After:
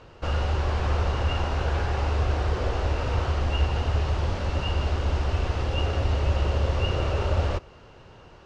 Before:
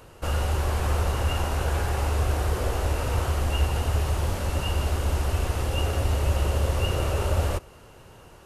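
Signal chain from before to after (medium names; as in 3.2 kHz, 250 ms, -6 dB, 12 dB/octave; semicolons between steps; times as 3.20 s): low-pass 5.4 kHz 24 dB/octave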